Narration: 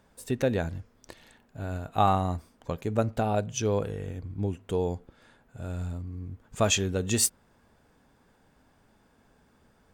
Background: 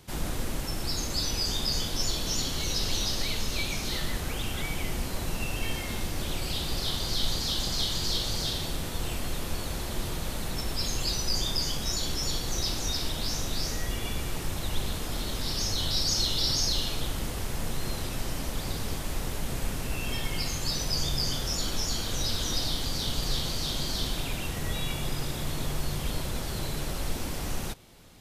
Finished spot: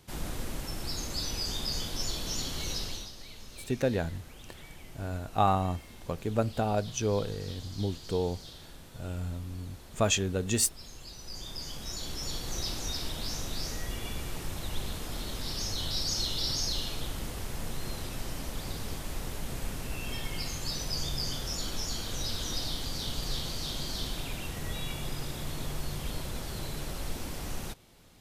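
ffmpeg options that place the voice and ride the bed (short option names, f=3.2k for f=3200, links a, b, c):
-filter_complex "[0:a]adelay=3400,volume=-2dB[a];[1:a]volume=8dB,afade=t=out:st=2.72:d=0.39:silence=0.237137,afade=t=in:st=11.14:d=1.42:silence=0.237137[b];[a][b]amix=inputs=2:normalize=0"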